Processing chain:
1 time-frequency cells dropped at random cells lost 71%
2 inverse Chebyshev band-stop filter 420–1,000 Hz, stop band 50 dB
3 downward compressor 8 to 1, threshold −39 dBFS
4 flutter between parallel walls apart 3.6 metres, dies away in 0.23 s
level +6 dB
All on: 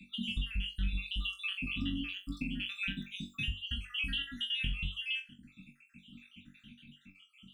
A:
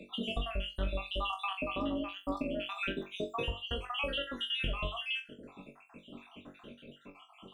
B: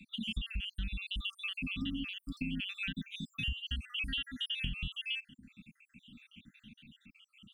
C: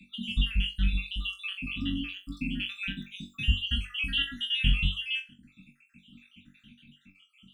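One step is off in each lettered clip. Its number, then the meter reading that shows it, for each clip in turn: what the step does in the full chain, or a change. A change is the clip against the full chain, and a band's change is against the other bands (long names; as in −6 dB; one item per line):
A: 2, 1 kHz band +22.0 dB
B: 4, change in integrated loudness −1.5 LU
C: 3, average gain reduction 4.0 dB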